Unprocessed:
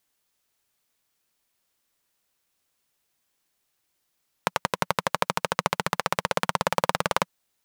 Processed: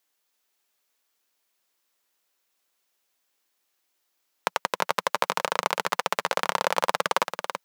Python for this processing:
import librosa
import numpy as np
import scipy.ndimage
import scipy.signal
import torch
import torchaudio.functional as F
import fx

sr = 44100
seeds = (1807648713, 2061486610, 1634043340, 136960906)

p1 = scipy.signal.sosfilt(scipy.signal.butter(2, 310.0, 'highpass', fs=sr, output='sos'), x)
p2 = fx.peak_eq(p1, sr, hz=9200.0, db=-3.5, octaves=0.29)
y = p2 + fx.echo_single(p2, sr, ms=332, db=-7.0, dry=0)